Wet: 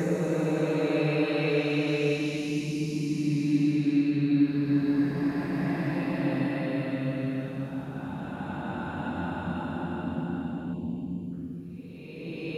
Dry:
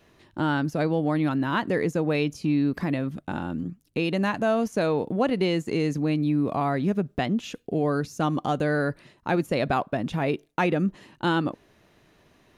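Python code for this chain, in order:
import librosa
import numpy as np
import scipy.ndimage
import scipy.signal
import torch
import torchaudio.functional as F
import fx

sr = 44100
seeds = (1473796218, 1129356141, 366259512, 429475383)

y = fx.paulstretch(x, sr, seeds[0], factor=6.4, window_s=0.5, from_s=1.93)
y = fx.spec_box(y, sr, start_s=10.73, length_s=0.59, low_hz=1100.0, high_hz=2200.0, gain_db=-21)
y = y * 10.0 ** (-1.5 / 20.0)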